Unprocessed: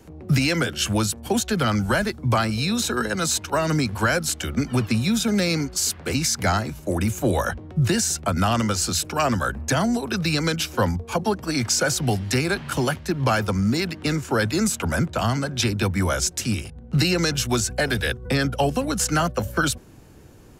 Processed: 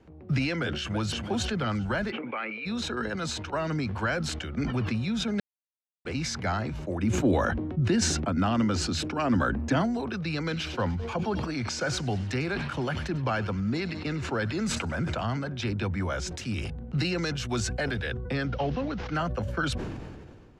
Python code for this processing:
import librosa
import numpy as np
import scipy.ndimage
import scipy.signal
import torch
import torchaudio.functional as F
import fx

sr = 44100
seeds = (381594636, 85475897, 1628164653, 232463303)

y = fx.echo_throw(x, sr, start_s=0.57, length_s=0.62, ms=330, feedback_pct=50, wet_db=-10.0)
y = fx.cabinet(y, sr, low_hz=320.0, low_slope=24, high_hz=2500.0, hz=(350.0, 680.0, 1000.0, 1600.0, 2300.0), db=(-7, -10, -7, -5, 9), at=(2.1, 2.65), fade=0.02)
y = fx.peak_eq(y, sr, hz=270.0, db=10.0, octaves=0.75, at=(7.03, 9.82))
y = fx.echo_wet_highpass(y, sr, ms=98, feedback_pct=53, hz=2200.0, wet_db=-13, at=(10.49, 15.24), fade=0.02)
y = fx.high_shelf(y, sr, hz=6600.0, db=8.0, at=(16.32, 17.91))
y = fx.cvsd(y, sr, bps=32000, at=(18.46, 19.15))
y = fx.edit(y, sr, fx.silence(start_s=5.4, length_s=0.65), tone=tone)
y = scipy.signal.sosfilt(scipy.signal.butter(2, 3400.0, 'lowpass', fs=sr, output='sos'), y)
y = fx.sustainer(y, sr, db_per_s=31.0)
y = y * librosa.db_to_amplitude(-8.0)